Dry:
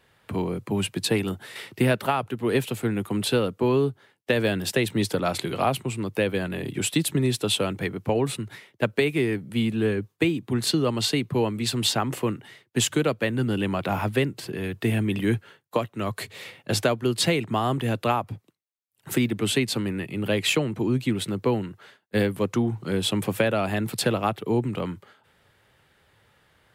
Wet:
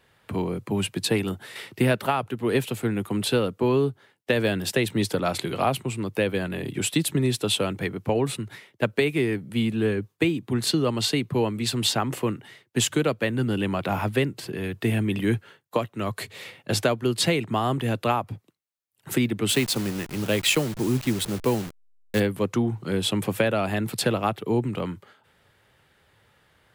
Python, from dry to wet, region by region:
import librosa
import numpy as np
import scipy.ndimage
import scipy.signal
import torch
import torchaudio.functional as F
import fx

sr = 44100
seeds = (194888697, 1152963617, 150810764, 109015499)

y = fx.chain(x, sr, fx.delta_hold(step_db=-33.0),
    fx.high_shelf(hz=4300.0, db=5.5), at=(19.49, 22.2))